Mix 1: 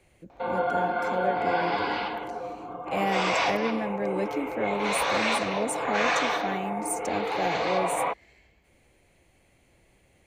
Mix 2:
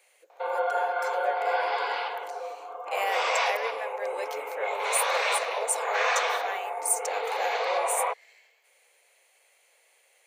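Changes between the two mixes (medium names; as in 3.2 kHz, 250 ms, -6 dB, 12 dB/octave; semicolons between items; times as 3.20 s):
speech: add tilt EQ +2.5 dB/octave; master: add elliptic high-pass 460 Hz, stop band 60 dB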